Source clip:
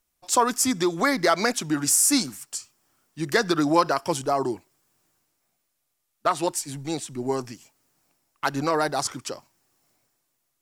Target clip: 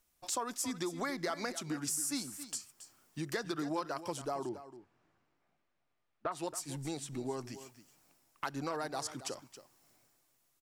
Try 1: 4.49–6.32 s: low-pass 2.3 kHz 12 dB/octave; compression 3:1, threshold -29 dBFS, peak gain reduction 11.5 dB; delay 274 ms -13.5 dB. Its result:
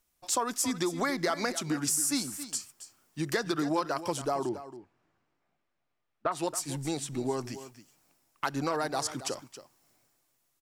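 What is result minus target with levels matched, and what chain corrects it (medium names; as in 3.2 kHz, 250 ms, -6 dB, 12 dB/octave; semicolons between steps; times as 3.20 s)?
compression: peak gain reduction -7 dB
4.49–6.32 s: low-pass 2.3 kHz 12 dB/octave; compression 3:1, threshold -39.5 dBFS, peak gain reduction 18.5 dB; delay 274 ms -13.5 dB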